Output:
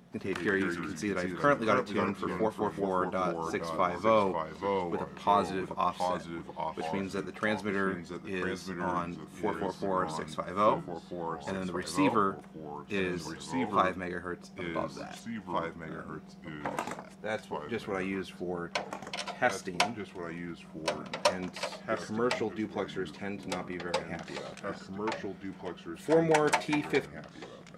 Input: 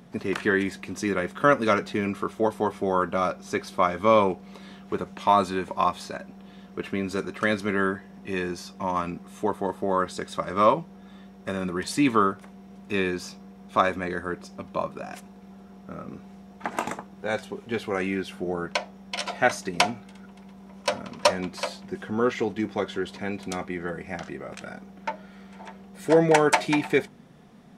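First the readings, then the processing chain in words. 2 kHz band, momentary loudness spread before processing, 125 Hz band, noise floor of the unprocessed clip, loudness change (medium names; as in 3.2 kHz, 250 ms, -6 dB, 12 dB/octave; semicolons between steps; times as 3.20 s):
-5.5 dB, 18 LU, -4.5 dB, -48 dBFS, -6.0 dB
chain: ever faster or slower copies 85 ms, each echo -2 st, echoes 2, each echo -6 dB; trim -6.5 dB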